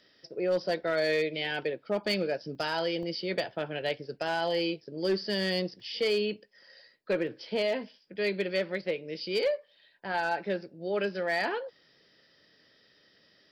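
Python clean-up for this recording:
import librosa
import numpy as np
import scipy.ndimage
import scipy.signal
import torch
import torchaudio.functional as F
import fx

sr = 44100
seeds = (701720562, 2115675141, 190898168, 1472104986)

y = fx.fix_declip(x, sr, threshold_db=-21.0)
y = fx.fix_interpolate(y, sr, at_s=(2.55, 3.03, 5.8, 7.27), length_ms=1.0)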